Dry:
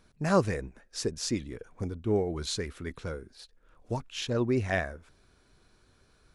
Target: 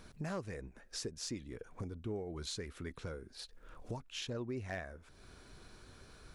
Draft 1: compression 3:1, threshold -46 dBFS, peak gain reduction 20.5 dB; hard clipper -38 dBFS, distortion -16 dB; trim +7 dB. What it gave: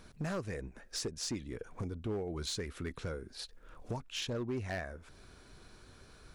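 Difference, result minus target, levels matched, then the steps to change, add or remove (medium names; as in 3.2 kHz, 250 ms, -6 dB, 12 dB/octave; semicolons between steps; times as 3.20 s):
compression: peak gain reduction -4.5 dB
change: compression 3:1, threshold -52.5 dBFS, peak gain reduction 25 dB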